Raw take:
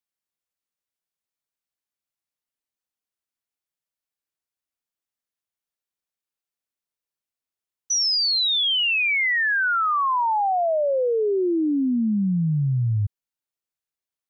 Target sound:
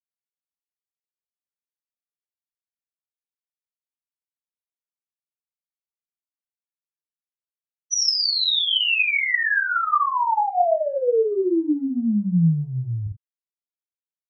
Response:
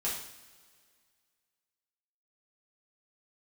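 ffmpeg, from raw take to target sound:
-filter_complex "[0:a]agate=range=-33dB:threshold=-18dB:ratio=3:detection=peak,asplit=3[a][b][c];[a]afade=t=out:st=9.07:d=0.02[d];[b]asubboost=boost=5.5:cutoff=200,afade=t=in:st=9.07:d=0.02,afade=t=out:st=9.85:d=0.02[e];[c]afade=t=in:st=9.85:d=0.02[f];[d][e][f]amix=inputs=3:normalize=0[g];[1:a]atrim=start_sample=2205,atrim=end_sample=4410[h];[g][h]afir=irnorm=-1:irlink=0"

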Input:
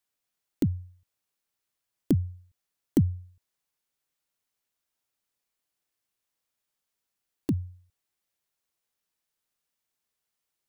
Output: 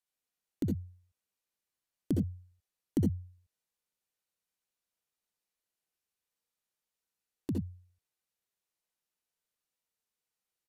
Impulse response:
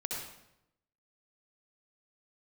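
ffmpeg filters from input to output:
-filter_complex "[0:a]asettb=1/sr,asplit=3[a][b][c];[a]atrim=end=0.704[d];[b]atrim=start=0.7:end=2.15,asetpts=PTS-STARTPTS,afade=t=in:d=0.004:c=qsin,afade=t=out:st=1.446:d=0.004:c=qsin,bandreject=f=231:t=h:w=4,bandreject=f=462:t=h:w=4,bandreject=f=693:t=h:w=4[e];[c]atrim=start=2.146[f];[d][e]acrossfade=d=0.004:c1=hsin:c2=qsin[g];[g][f]acrossfade=d=0.004:c1=qsin:c2=hsin[h];[1:a]atrim=start_sample=2205,atrim=end_sample=3969[i];[h][i]afir=irnorm=-1:irlink=0,aresample=32000,aresample=44100,volume=-5.5dB"

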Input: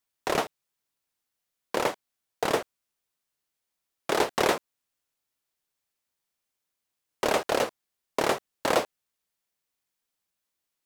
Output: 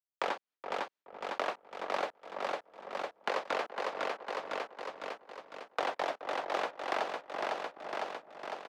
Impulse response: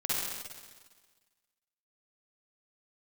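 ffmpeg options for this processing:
-filter_complex "[0:a]aemphasis=mode=reproduction:type=50fm,aecho=1:1:630|1260|1890|2520|3150|3780|4410:0.447|0.246|0.135|0.0743|0.0409|0.0225|0.0124,agate=range=-33dB:threshold=-58dB:ratio=3:detection=peak,asplit=2[a][b];[b]adelay=528,lowpass=f=1.1k:p=1,volume=-13.5dB,asplit=2[c][d];[d]adelay=528,lowpass=f=1.1k:p=1,volume=0.37,asplit=2[e][f];[f]adelay=528,lowpass=f=1.1k:p=1,volume=0.37,asplit=2[g][h];[h]adelay=528,lowpass=f=1.1k:p=1,volume=0.37[i];[a][c][e][g][i]amix=inputs=5:normalize=0,asetrate=55125,aresample=44100,asplit=2[j][k];[k]aeval=exprs='sgn(val(0))*max(abs(val(0))-0.00422,0)':c=same,volume=-3.5dB[l];[j][l]amix=inputs=2:normalize=0,acrossover=split=210 5900:gain=0.224 1 0.251[m][n][o];[m][n][o]amix=inputs=3:normalize=0,acrossover=split=380|3100[p][q][r];[p]acompressor=threshold=-47dB:ratio=4[s];[q]acompressor=threshold=-30dB:ratio=4[t];[r]acompressor=threshold=-47dB:ratio=4[u];[s][t][u]amix=inputs=3:normalize=0,volume=-2.5dB"

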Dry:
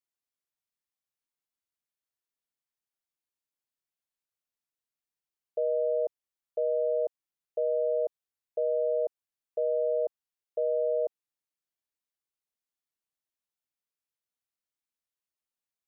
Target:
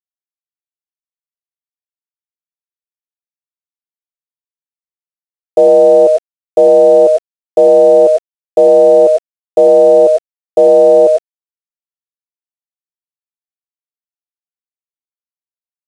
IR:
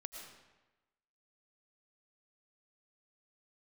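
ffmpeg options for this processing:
-filter_complex "[1:a]atrim=start_sample=2205,afade=t=out:st=0.17:d=0.01,atrim=end_sample=7938,asetrate=48510,aresample=44100[a];[0:a][a]afir=irnorm=-1:irlink=0,acrusher=bits=10:mix=0:aa=0.000001,apsyclip=35.5dB,aresample=22050,aresample=44100,volume=-1.5dB"

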